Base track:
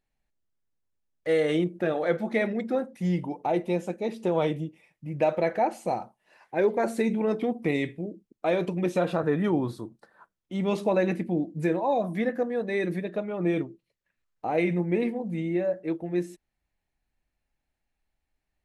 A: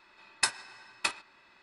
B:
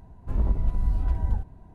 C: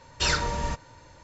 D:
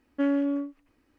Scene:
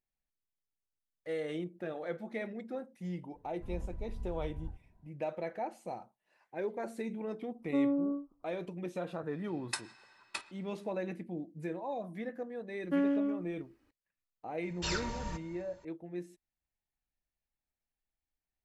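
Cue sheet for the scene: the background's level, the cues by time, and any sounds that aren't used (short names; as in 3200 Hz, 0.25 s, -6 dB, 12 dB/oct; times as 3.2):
base track -13 dB
3.34 add B -17.5 dB
7.54 add D -5 dB, fades 0.10 s + steep low-pass 1300 Hz 96 dB/oct
9.3 add A -10 dB
12.73 add D -4.5 dB
14.62 add C -11 dB + echo 0.256 s -20.5 dB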